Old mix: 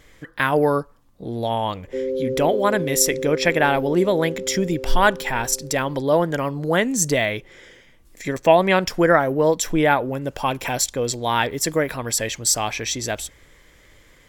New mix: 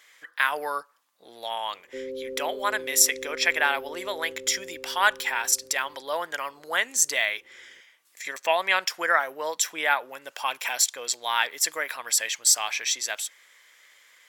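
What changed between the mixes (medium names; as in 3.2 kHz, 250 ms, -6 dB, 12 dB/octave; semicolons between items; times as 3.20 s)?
speech: add high-pass 1.2 kHz 12 dB/octave; background -10.5 dB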